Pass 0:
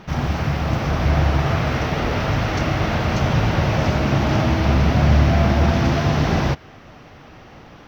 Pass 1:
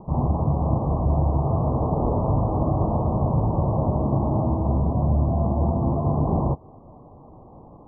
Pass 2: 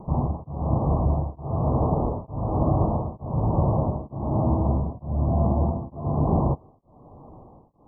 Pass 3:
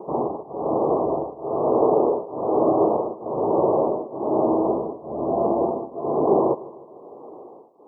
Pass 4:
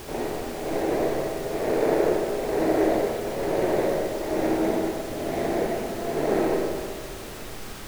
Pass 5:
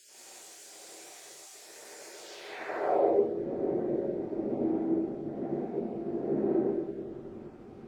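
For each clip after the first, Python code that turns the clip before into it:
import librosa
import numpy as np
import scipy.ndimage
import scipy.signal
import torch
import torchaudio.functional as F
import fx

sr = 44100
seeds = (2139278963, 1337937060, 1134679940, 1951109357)

y1 = fx.spec_gate(x, sr, threshold_db=-30, keep='strong')
y1 = scipy.signal.sosfilt(scipy.signal.butter(16, 1100.0, 'lowpass', fs=sr, output='sos'), y1)
y1 = fx.rider(y1, sr, range_db=3, speed_s=0.5)
y1 = y1 * 10.0 ** (-3.0 / 20.0)
y2 = y1 * np.abs(np.cos(np.pi * 1.1 * np.arange(len(y1)) / sr))
y2 = y2 * 10.0 ** (1.0 / 20.0)
y3 = fx.highpass_res(y2, sr, hz=400.0, q=3.5)
y3 = fx.echo_feedback(y3, sr, ms=152, feedback_pct=56, wet_db=-19.0)
y3 = y3 * 10.0 ** (3.0 / 20.0)
y4 = scipy.signal.medfilt(y3, 41)
y4 = fx.dmg_noise_colour(y4, sr, seeds[0], colour='pink', level_db=-36.0)
y4 = fx.rev_freeverb(y4, sr, rt60_s=1.7, hf_ratio=0.6, predelay_ms=25, drr_db=0.0)
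y4 = y4 * 10.0 ** (-5.0 / 20.0)
y5 = fx.spec_dropout(y4, sr, seeds[1], share_pct=21)
y5 = fx.filter_sweep_bandpass(y5, sr, from_hz=7100.0, to_hz=250.0, start_s=2.07, end_s=3.25, q=1.7)
y5 = fx.rev_gated(y5, sr, seeds[2], gate_ms=200, shape='rising', drr_db=-5.5)
y5 = y5 * 10.0 ** (-6.0 / 20.0)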